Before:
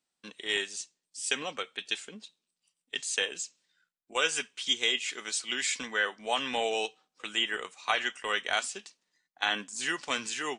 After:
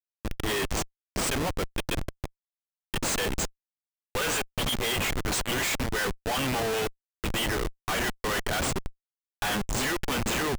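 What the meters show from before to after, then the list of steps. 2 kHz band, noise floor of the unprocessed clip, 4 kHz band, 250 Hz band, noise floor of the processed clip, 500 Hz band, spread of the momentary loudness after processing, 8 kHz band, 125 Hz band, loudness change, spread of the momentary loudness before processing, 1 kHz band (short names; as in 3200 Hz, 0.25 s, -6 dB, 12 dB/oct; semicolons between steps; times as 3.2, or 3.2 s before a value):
+0.5 dB, under -85 dBFS, -1.0 dB, +11.0 dB, under -85 dBFS, +5.0 dB, 8 LU, +3.0 dB, +24.0 dB, +2.0 dB, 10 LU, +3.0 dB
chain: dynamic EQ 4700 Hz, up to -3 dB, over -42 dBFS, Q 1.5; Schmitt trigger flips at -36 dBFS; gain +7 dB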